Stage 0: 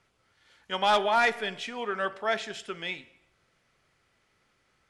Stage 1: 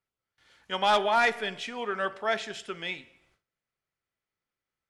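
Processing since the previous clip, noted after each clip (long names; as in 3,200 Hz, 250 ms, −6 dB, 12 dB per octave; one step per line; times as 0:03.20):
noise gate with hold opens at −57 dBFS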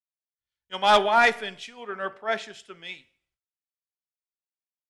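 multiband upward and downward expander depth 100%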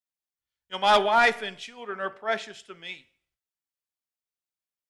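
soft clipping −9.5 dBFS, distortion −21 dB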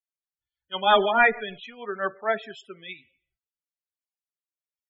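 spectral peaks only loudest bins 32
rotating-speaker cabinet horn 6.3 Hz, later 1.2 Hz, at 0:01.83
level +4.5 dB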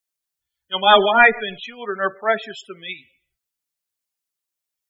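high-shelf EQ 3,700 Hz +7 dB
level +5.5 dB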